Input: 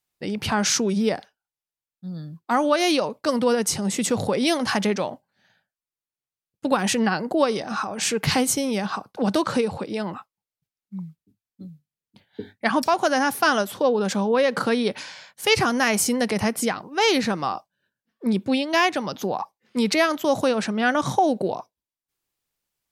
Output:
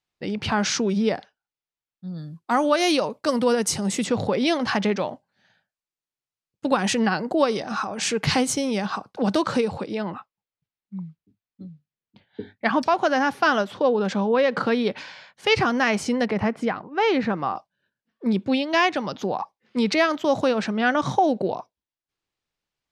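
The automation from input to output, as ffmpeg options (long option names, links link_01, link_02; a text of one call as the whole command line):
ffmpeg -i in.wav -af "asetnsamples=nb_out_samples=441:pad=0,asendcmd='2.18 lowpass f 11000;4.04 lowpass f 4500;5.09 lowpass f 7500;9.94 lowpass f 3900;16.26 lowpass f 2200;17.56 lowpass f 5000',lowpass=5000" out.wav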